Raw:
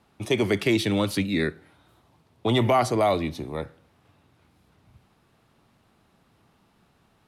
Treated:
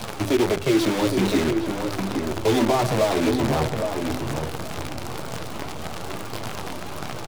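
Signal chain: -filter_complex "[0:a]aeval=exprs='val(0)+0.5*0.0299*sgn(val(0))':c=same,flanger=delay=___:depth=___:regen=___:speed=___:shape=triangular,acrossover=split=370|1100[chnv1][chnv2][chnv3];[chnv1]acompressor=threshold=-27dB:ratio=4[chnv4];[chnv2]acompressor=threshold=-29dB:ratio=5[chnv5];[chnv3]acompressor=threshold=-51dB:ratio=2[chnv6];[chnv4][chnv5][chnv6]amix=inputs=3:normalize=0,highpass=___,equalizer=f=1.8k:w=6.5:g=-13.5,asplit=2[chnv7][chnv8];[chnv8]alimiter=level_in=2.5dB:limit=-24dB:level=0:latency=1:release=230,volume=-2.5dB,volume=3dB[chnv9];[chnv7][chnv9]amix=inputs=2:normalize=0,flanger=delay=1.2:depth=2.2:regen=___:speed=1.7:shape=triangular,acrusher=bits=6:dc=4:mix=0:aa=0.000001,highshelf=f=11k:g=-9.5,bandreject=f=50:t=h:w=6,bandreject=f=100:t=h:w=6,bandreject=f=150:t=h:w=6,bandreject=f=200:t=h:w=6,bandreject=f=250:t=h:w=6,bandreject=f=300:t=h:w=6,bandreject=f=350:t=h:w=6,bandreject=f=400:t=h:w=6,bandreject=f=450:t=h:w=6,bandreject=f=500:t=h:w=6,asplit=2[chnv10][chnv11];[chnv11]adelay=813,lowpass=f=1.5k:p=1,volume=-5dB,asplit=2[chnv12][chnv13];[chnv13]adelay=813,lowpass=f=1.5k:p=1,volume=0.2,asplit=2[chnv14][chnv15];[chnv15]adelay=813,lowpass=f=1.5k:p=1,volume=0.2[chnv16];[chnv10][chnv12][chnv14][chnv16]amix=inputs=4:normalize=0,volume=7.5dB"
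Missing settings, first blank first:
8.4, 8.3, 3, 0.47, 94, -14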